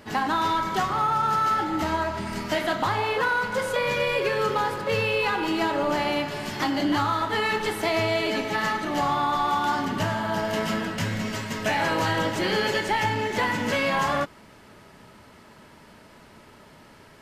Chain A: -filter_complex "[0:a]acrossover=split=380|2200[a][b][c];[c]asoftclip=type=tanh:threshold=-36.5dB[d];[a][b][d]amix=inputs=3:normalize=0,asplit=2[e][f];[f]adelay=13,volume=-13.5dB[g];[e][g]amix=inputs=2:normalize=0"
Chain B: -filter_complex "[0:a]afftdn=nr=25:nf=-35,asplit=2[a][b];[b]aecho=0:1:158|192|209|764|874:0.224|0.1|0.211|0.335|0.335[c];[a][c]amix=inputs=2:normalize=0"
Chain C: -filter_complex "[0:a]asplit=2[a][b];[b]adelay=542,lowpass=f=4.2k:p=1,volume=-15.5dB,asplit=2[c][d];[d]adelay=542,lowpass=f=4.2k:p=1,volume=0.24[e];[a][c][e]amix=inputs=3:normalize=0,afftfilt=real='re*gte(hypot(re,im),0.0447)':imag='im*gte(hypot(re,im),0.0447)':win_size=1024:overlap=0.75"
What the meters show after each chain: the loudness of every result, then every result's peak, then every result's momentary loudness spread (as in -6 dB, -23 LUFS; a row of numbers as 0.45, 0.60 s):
-25.5, -24.0, -25.0 LUFS; -12.5, -10.5, -12.0 dBFS; 4, 5, 5 LU